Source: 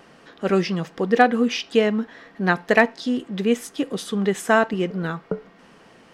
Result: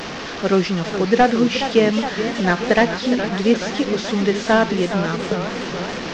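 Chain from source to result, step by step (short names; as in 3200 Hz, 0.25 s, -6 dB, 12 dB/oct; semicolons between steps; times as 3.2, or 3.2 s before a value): delta modulation 32 kbps, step -26.5 dBFS; warbling echo 0.421 s, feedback 73%, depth 199 cents, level -10 dB; gain +3 dB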